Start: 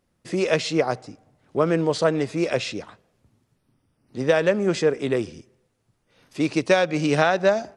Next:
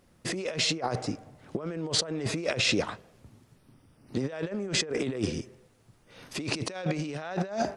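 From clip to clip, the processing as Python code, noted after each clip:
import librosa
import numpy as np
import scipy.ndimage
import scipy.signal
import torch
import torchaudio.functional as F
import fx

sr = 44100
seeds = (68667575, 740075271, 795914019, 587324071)

y = fx.over_compress(x, sr, threshold_db=-32.0, ratio=-1.0)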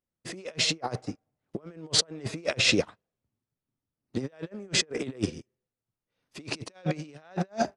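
y = fx.upward_expand(x, sr, threshold_db=-47.0, expansion=2.5)
y = y * 10.0 ** (5.0 / 20.0)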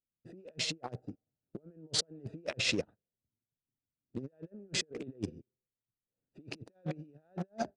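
y = fx.wiener(x, sr, points=41)
y = y * 10.0 ** (-8.0 / 20.0)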